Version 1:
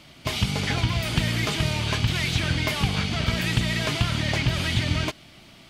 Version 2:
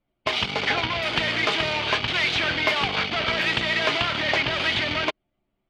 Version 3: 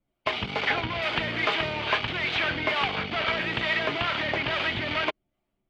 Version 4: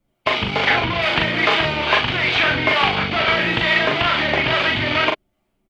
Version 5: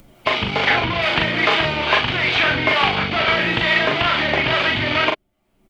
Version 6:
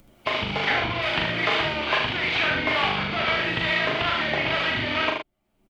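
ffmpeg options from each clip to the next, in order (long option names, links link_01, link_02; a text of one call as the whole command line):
ffmpeg -i in.wav -filter_complex "[0:a]anlmdn=63.1,acrossover=split=340 4700:gain=0.1 1 0.112[link_01][link_02][link_03];[link_01][link_02][link_03]amix=inputs=3:normalize=0,volume=6.5dB" out.wav
ffmpeg -i in.wav -filter_complex "[0:a]acrossover=split=3400[link_01][link_02];[link_02]acompressor=threshold=-43dB:ratio=4:attack=1:release=60[link_03];[link_01][link_03]amix=inputs=2:normalize=0,acrossover=split=470[link_04][link_05];[link_04]aeval=exprs='val(0)*(1-0.5/2+0.5/2*cos(2*PI*2.3*n/s))':channel_layout=same[link_06];[link_05]aeval=exprs='val(0)*(1-0.5/2-0.5/2*cos(2*PI*2.3*n/s))':channel_layout=same[link_07];[link_06][link_07]amix=inputs=2:normalize=0" out.wav
ffmpeg -i in.wav -filter_complex "[0:a]asplit=2[link_01][link_02];[link_02]adelay=40,volume=-3.5dB[link_03];[link_01][link_03]amix=inputs=2:normalize=0,volume=7.5dB" out.wav
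ffmpeg -i in.wav -af "acompressor=mode=upward:threshold=-31dB:ratio=2.5" out.wav
ffmpeg -i in.wav -af "aecho=1:1:76:0.562,volume=-7dB" out.wav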